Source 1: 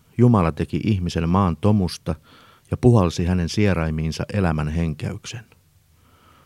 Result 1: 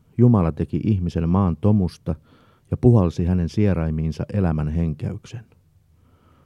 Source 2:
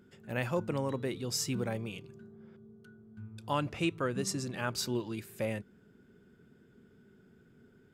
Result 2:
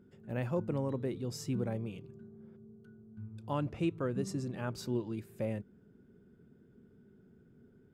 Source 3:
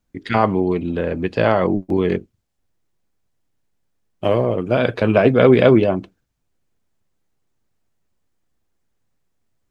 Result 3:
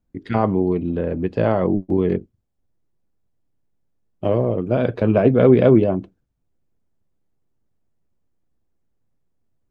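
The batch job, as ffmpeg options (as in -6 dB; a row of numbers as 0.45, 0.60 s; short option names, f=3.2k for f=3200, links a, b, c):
-af "tiltshelf=f=970:g=6.5,volume=-5.5dB"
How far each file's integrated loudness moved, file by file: 0.0, -2.0, -1.5 LU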